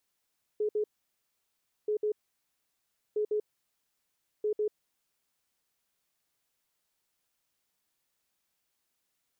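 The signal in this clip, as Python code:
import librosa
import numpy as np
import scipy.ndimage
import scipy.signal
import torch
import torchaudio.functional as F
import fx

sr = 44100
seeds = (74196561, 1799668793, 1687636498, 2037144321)

y = fx.beep_pattern(sr, wave='sine', hz=423.0, on_s=0.09, off_s=0.06, beeps=2, pause_s=1.04, groups=4, level_db=-26.0)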